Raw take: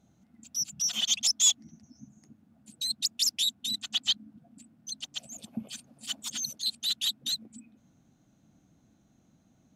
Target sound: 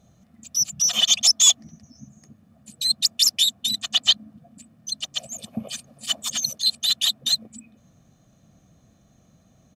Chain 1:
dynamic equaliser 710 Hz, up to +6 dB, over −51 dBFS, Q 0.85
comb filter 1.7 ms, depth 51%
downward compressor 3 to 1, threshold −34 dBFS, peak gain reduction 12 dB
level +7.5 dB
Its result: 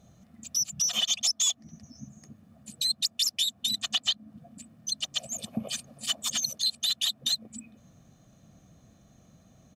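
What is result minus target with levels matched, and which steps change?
downward compressor: peak gain reduction +12 dB
remove: downward compressor 3 to 1, threshold −34 dBFS, peak gain reduction 12 dB

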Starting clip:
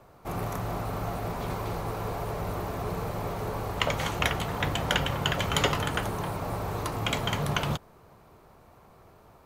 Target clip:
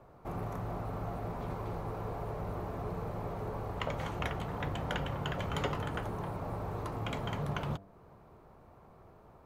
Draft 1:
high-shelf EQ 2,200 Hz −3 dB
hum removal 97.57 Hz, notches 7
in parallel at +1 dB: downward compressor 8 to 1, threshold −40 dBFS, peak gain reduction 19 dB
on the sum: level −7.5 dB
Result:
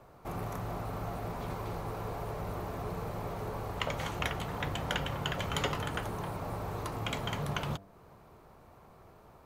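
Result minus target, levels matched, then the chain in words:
4,000 Hz band +5.0 dB
high-shelf EQ 2,200 Hz −13 dB
hum removal 97.57 Hz, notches 7
in parallel at +1 dB: downward compressor 8 to 1, threshold −40 dBFS, peak gain reduction 17.5 dB
on the sum: level −7.5 dB

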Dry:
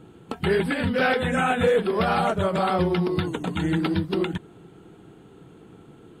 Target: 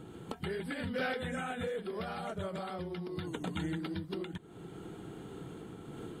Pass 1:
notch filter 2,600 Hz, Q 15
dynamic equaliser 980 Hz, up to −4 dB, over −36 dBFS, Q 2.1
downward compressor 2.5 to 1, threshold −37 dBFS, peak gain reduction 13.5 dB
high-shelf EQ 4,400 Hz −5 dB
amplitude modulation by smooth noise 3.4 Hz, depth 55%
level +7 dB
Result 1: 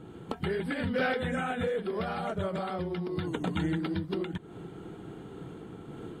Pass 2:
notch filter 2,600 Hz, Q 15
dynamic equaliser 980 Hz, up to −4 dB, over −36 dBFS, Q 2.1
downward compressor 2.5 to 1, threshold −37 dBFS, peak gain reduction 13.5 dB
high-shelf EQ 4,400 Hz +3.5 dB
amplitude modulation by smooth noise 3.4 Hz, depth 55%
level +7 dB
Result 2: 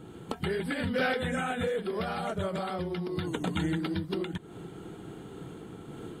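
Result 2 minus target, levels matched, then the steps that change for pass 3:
downward compressor: peak gain reduction −6.5 dB
change: downward compressor 2.5 to 1, threshold −47.5 dBFS, peak gain reduction 19.5 dB

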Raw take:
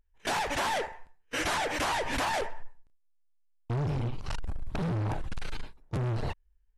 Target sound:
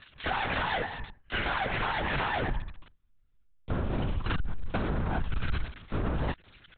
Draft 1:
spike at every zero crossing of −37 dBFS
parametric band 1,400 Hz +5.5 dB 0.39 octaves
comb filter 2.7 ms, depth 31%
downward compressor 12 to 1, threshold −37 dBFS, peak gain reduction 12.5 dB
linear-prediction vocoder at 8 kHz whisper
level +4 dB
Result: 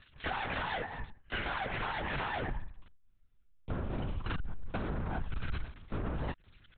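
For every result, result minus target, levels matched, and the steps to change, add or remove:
spike at every zero crossing: distortion −9 dB; downward compressor: peak gain reduction +6 dB
change: spike at every zero crossing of −27.5 dBFS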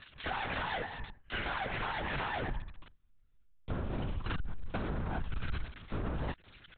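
downward compressor: peak gain reduction +6 dB
change: downward compressor 12 to 1, threshold −30.5 dBFS, peak gain reduction 7 dB

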